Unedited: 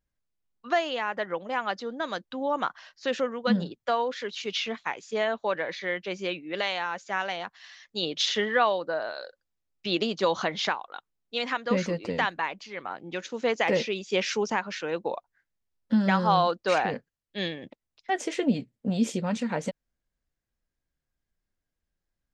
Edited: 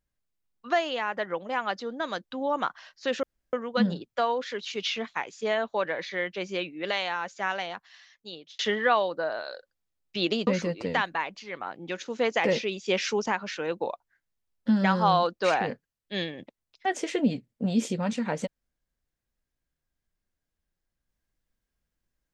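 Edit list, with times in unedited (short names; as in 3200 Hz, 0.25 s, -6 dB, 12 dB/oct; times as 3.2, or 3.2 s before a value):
3.23 insert room tone 0.30 s
7.24–8.29 fade out
10.17–11.71 cut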